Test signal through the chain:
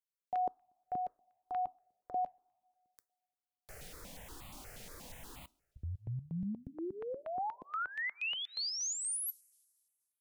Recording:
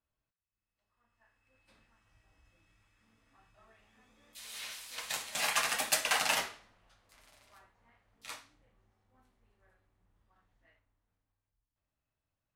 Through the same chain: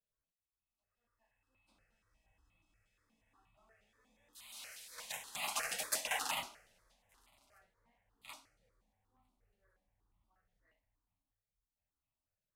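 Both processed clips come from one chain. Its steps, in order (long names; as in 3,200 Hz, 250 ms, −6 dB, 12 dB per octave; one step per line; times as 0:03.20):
coupled-rooms reverb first 0.24 s, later 2 s, from −19 dB, DRR 17.5 dB
step-sequenced phaser 8.4 Hz 290–1,600 Hz
level −4.5 dB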